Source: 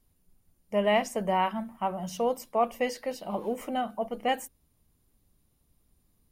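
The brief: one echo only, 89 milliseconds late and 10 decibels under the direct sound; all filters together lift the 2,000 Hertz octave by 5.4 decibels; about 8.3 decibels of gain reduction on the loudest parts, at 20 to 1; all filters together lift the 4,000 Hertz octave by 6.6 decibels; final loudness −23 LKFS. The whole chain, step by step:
parametric band 2,000 Hz +4 dB
parametric band 4,000 Hz +8.5 dB
downward compressor 20 to 1, threshold −26 dBFS
single-tap delay 89 ms −10 dB
level +10 dB

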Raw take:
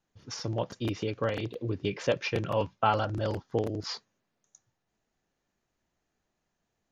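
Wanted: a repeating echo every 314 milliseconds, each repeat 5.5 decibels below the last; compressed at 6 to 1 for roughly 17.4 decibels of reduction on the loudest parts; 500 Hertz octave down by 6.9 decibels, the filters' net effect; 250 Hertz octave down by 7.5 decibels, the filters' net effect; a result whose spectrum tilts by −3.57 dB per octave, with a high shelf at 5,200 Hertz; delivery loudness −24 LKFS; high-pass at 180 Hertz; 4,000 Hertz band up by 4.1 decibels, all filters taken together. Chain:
high-pass filter 180 Hz
parametric band 250 Hz −6.5 dB
parametric band 500 Hz −6.5 dB
parametric band 4,000 Hz +7.5 dB
high-shelf EQ 5,200 Hz −3.5 dB
downward compressor 6 to 1, threshold −41 dBFS
repeating echo 314 ms, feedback 53%, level −5.5 dB
level +20 dB

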